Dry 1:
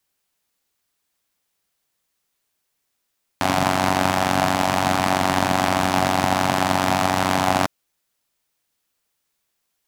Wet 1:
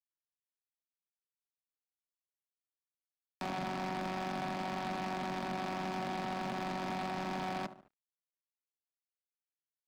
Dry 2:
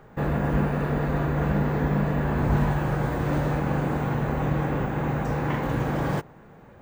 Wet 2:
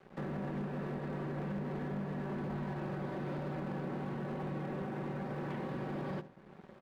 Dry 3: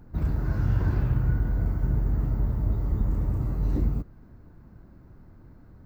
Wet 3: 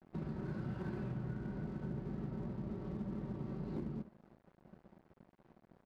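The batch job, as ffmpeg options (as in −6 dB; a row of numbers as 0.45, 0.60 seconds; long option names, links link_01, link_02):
-filter_complex "[0:a]aresample=11025,aresample=44100,acrossover=split=180|450|710[link_01][link_02][link_03][link_04];[link_02]acontrast=86[link_05];[link_01][link_05][link_03][link_04]amix=inputs=4:normalize=0,highpass=130,aecho=1:1:5.3:0.58,asplit=2[link_06][link_07];[link_07]adelay=72,lowpass=frequency=1100:poles=1,volume=-15dB,asplit=2[link_08][link_09];[link_09]adelay=72,lowpass=frequency=1100:poles=1,volume=0.48,asplit=2[link_10][link_11];[link_11]adelay=72,lowpass=frequency=1100:poles=1,volume=0.48,asplit=2[link_12][link_13];[link_13]adelay=72,lowpass=frequency=1100:poles=1,volume=0.48[link_14];[link_06][link_08][link_10][link_12][link_14]amix=inputs=5:normalize=0,aeval=exprs='sgn(val(0))*max(abs(val(0))-0.00398,0)':channel_layout=same,acompressor=threshold=-39dB:ratio=2,asoftclip=type=hard:threshold=-29.5dB,volume=-4.5dB"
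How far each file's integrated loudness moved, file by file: −18.0, −13.5, −15.5 LU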